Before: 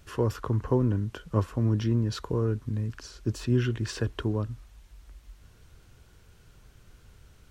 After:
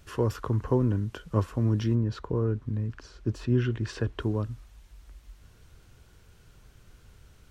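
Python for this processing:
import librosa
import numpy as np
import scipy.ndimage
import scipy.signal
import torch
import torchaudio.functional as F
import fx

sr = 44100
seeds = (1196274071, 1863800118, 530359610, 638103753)

y = fx.lowpass(x, sr, hz=fx.line((1.94, 1500.0), (4.19, 3400.0)), slope=6, at=(1.94, 4.19), fade=0.02)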